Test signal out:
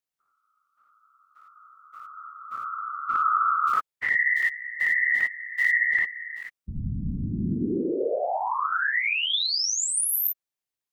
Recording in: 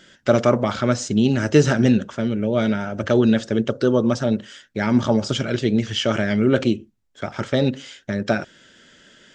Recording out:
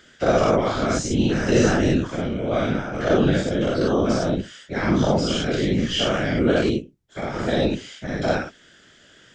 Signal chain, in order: every event in the spectrogram widened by 120 ms; whisper effect; trim -6 dB

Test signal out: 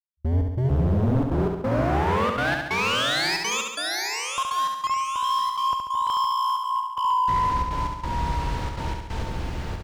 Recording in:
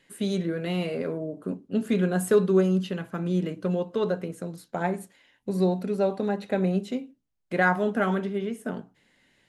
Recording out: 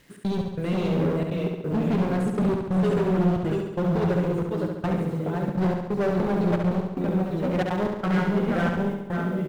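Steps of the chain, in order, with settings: delay 516 ms -7 dB; in parallel at -3 dB: compression 4:1, threshold -41 dBFS; on the sum: low-pass 5.8 kHz 12 dB/octave; treble shelf 3.1 kHz -7 dB; ever faster or slower copies 517 ms, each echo -1 st, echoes 3, each echo -6 dB; bit crusher 10-bit; trance gate "xx.xx..xxxxxx" 183 bpm -60 dB; peaking EQ 65 Hz +12 dB 2.4 oct; reverse; upward compressor, threshold -32 dBFS; reverse; overload inside the chain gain 22 dB; flutter echo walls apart 11.9 m, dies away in 0.9 s

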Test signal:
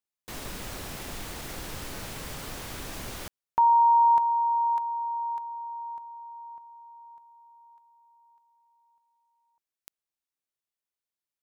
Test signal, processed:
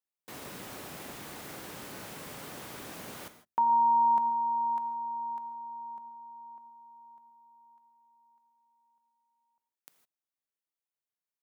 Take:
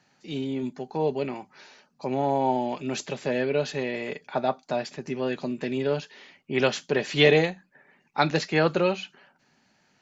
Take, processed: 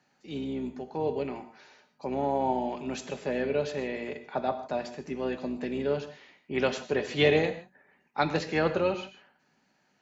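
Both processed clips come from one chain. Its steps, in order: octave divider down 2 oct, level -4 dB; high-pass 160 Hz 12 dB/octave; peaking EQ 5.1 kHz -4 dB 2.2 oct; gated-style reverb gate 180 ms flat, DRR 9.5 dB; trim -3.5 dB

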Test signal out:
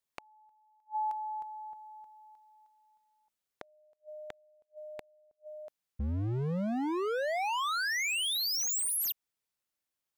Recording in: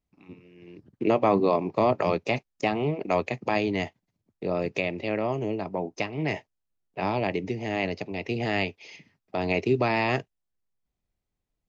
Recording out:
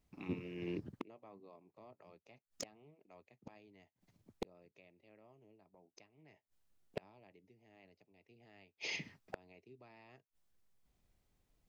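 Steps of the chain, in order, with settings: inverted gate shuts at -30 dBFS, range -42 dB; wavefolder -34 dBFS; trim +6 dB

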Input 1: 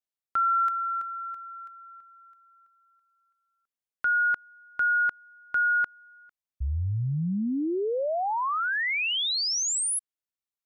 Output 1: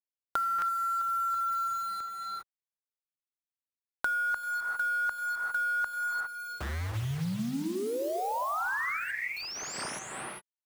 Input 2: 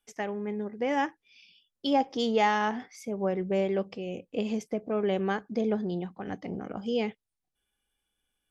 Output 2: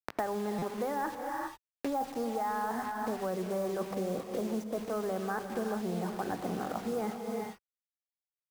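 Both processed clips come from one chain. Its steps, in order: in parallel at -8 dB: hard clipper -26 dBFS; on the sum: Butterworth band-stop 3.3 kHz, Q 1.2; speakerphone echo 90 ms, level -26 dB; dynamic bell 3.3 kHz, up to +4 dB, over -44 dBFS, Q 1.2; level-controlled noise filter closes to 530 Hz, open at -23.5 dBFS; FFT filter 400 Hz 0 dB, 940 Hz +8 dB, 1.5 kHz +6 dB, 2.5 kHz -11 dB, 5.1 kHz -7 dB, 8.6 kHz -8 dB; reverse; compression 6:1, threshold -32 dBFS; reverse; hum notches 50/100/150/200/250/300/350 Hz; word length cut 8-bit, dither none; gated-style reverb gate 430 ms rising, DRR 6 dB; buffer glitch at 0.58 s, samples 256, times 6; three bands compressed up and down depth 100%

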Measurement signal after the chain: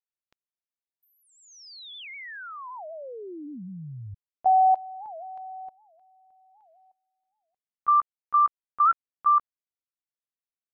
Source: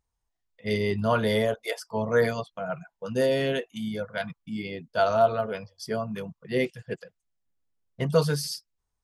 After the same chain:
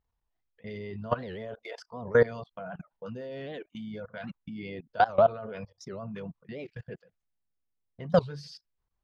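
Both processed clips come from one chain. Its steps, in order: level held to a coarse grid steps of 21 dB; distance through air 200 m; warped record 78 rpm, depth 250 cents; trim +4 dB

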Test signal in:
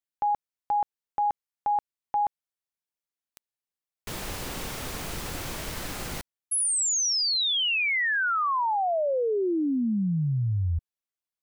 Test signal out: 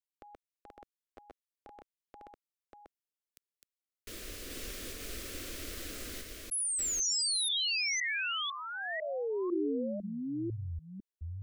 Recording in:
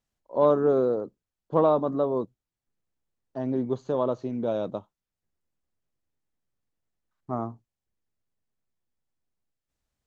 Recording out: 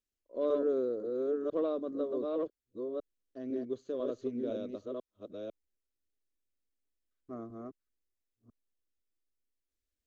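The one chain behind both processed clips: chunks repeated in reverse 500 ms, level -2 dB; static phaser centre 360 Hz, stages 4; trim -7.5 dB

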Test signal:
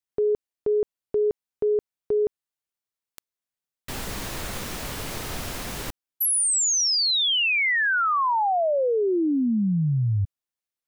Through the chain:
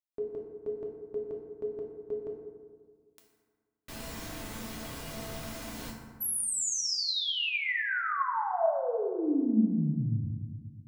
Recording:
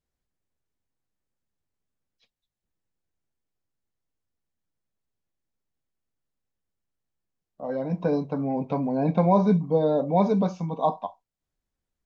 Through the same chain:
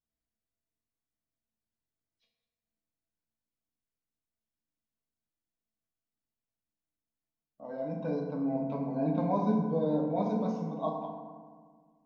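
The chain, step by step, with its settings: feedback comb 220 Hz, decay 0.23 s, harmonics odd, mix 80%; FDN reverb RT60 1.7 s, low-frequency decay 1.25×, high-frequency decay 0.45×, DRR 0 dB

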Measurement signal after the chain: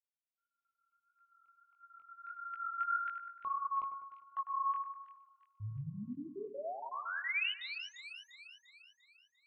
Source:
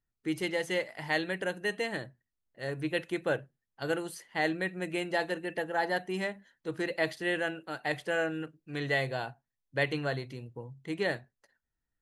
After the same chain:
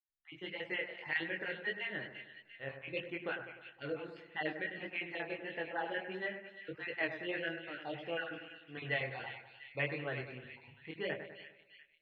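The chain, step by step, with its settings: random holes in the spectrogram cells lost 37%; four-pole ladder low-pass 3.1 kHz, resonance 50%; level rider gain up to 8 dB; chorus 1.6 Hz, delay 18 ms, depth 6.6 ms; hum notches 60/120/180 Hz; two-band feedback delay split 2 kHz, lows 100 ms, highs 347 ms, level -8.5 dB; trim -3.5 dB

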